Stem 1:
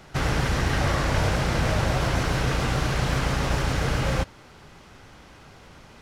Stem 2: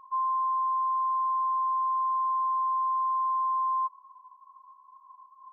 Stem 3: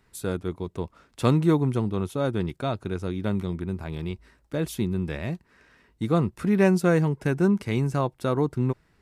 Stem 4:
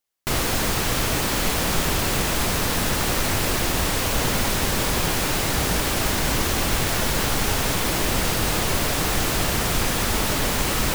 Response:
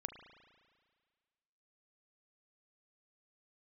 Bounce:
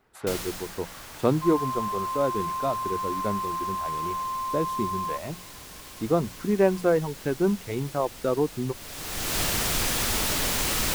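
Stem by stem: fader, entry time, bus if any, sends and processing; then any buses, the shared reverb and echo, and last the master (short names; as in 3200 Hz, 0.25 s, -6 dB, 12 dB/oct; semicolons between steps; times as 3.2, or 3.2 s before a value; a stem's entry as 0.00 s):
-17.0 dB, 0.00 s, no send, HPF 720 Hz 24 dB/oct; high shelf 4000 Hz -11.5 dB
-0.5 dB, 1.30 s, no send, HPF 1000 Hz
-7.0 dB, 0.00 s, no send, reverb removal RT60 1.8 s; bell 540 Hz +10 dB 2.4 oct
-6.5 dB, 0.00 s, no send, high shelf 2900 Hz +11.5 dB; auto duck -18 dB, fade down 0.80 s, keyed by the third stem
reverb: off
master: high shelf 4700 Hz -5.5 dB; notches 60/120/180 Hz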